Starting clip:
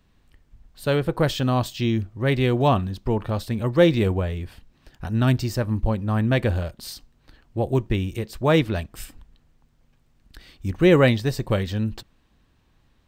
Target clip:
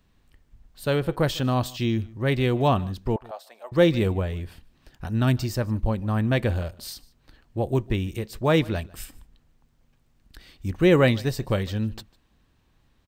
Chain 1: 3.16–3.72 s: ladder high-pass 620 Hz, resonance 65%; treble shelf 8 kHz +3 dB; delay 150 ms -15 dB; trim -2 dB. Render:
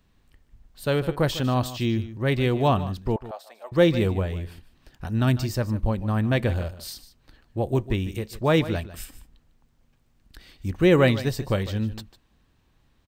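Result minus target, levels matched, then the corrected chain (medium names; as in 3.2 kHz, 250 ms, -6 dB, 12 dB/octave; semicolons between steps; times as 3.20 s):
echo-to-direct +8.5 dB
3.16–3.72 s: ladder high-pass 620 Hz, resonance 65%; treble shelf 8 kHz +3 dB; delay 150 ms -23.5 dB; trim -2 dB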